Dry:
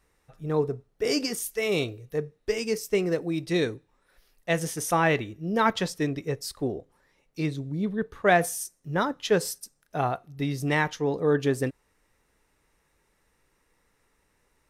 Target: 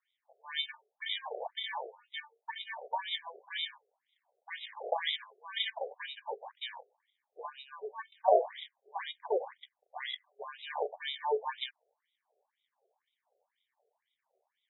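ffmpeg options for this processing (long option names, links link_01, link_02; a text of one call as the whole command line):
ffmpeg -i in.wav -af "acrusher=samples=33:mix=1:aa=0.000001,highshelf=frequency=3400:width_type=q:width=1.5:gain=14,afftfilt=real='re*between(b*sr/1024,530*pow(2800/530,0.5+0.5*sin(2*PI*2*pts/sr))/1.41,530*pow(2800/530,0.5+0.5*sin(2*PI*2*pts/sr))*1.41)':imag='im*between(b*sr/1024,530*pow(2800/530,0.5+0.5*sin(2*PI*2*pts/sr))/1.41,530*pow(2800/530,0.5+0.5*sin(2*PI*2*pts/sr))*1.41)':win_size=1024:overlap=0.75,volume=-1.5dB" out.wav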